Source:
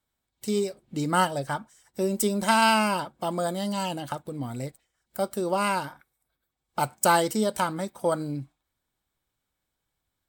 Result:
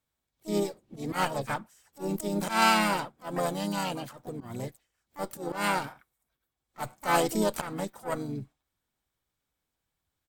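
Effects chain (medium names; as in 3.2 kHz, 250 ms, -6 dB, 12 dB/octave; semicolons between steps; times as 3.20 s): Chebyshev shaper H 2 -33 dB, 6 -20 dB, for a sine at -8 dBFS; slow attack 131 ms; harmony voices -3 st -8 dB, +7 st -7 dB; trim -3.5 dB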